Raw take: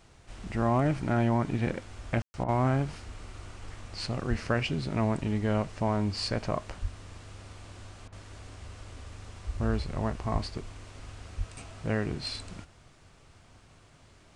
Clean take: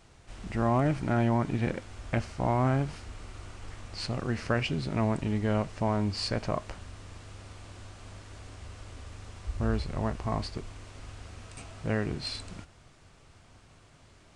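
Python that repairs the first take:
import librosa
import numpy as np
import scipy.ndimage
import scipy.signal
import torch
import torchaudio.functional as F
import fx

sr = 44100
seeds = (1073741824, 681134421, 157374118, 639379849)

y = fx.fix_deplosive(x, sr, at_s=(4.29, 6.81, 10.32, 11.37))
y = fx.fix_ambience(y, sr, seeds[0], print_start_s=13.82, print_end_s=14.32, start_s=2.22, end_s=2.34)
y = fx.fix_interpolate(y, sr, at_s=(2.44, 8.08), length_ms=43.0)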